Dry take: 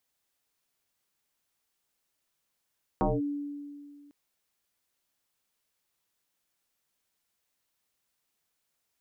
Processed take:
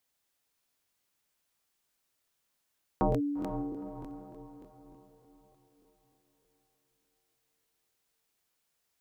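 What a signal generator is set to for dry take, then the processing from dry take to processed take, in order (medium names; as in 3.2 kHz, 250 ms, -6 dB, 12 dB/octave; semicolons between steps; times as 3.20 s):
FM tone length 1.10 s, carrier 288 Hz, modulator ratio 0.56, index 4.8, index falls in 0.20 s linear, decay 2.14 s, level -21.5 dB
echo that smears into a reverb 468 ms, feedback 47%, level -8.5 dB; crackling interface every 0.30 s, samples 1024, repeat, from 0.70 s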